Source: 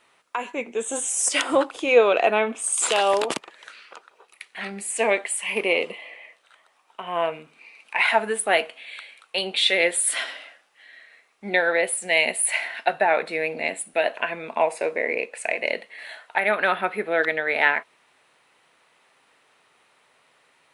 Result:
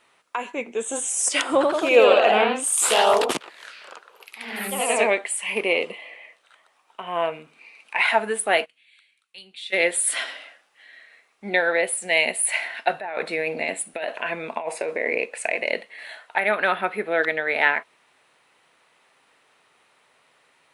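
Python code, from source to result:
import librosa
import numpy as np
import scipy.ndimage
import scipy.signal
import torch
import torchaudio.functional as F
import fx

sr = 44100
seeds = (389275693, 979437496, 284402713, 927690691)

y = fx.echo_pitch(x, sr, ms=91, semitones=1, count=3, db_per_echo=-3.0, at=(1.54, 5.26))
y = fx.tone_stack(y, sr, knobs='6-0-2', at=(8.64, 9.72), fade=0.02)
y = fx.over_compress(y, sr, threshold_db=-26.0, ratio=-1.0, at=(12.9, 15.82))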